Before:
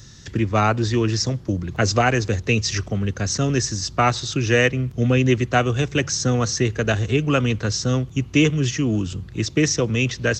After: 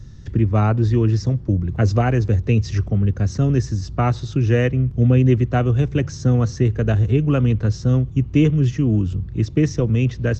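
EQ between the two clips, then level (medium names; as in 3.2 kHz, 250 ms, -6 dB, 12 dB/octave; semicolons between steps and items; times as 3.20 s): tilt EQ -3.5 dB/octave; -5.0 dB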